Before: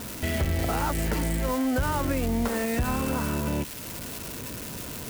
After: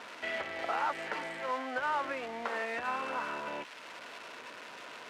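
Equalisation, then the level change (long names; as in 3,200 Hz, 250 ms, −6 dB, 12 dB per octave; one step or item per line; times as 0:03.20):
band-pass filter 780–2,600 Hz
0.0 dB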